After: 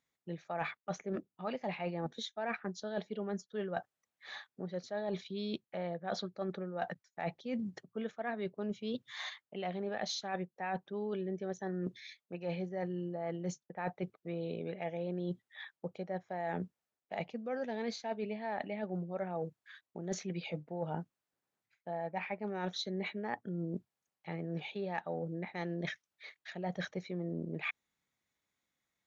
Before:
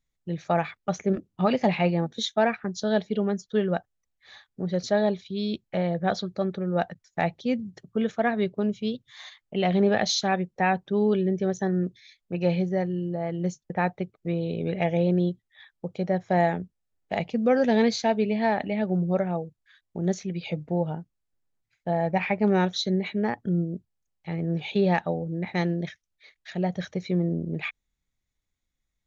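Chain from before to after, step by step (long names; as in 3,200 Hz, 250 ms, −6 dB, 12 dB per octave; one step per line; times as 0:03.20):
high-pass filter 150 Hz 12 dB per octave
parametric band 1,100 Hz +6.5 dB 2.8 octaves
reversed playback
downward compressor 12 to 1, threshold −33 dBFS, peak gain reduction 21 dB
reversed playback
level −1.5 dB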